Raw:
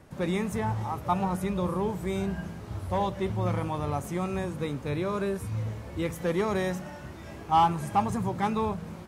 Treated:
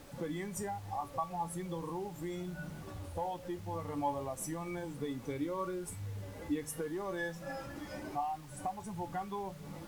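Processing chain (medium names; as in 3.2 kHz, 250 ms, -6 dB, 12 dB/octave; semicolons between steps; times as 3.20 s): spectral contrast enhancement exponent 1.6; RIAA curve recording; compression 5:1, threshold -41 dBFS, peak gain reduction 19.5 dB; feedback comb 310 Hz, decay 0.2 s, harmonics all, mix 80%; added noise pink -73 dBFS; speed mistake 48 kHz file played as 44.1 kHz; trim +15.5 dB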